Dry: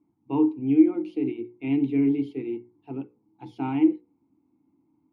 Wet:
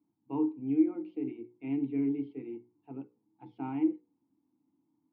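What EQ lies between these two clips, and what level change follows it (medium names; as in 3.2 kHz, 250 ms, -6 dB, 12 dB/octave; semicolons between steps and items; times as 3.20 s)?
band-pass 110–2100 Hz; band-stop 370 Hz, Q 12; -8.0 dB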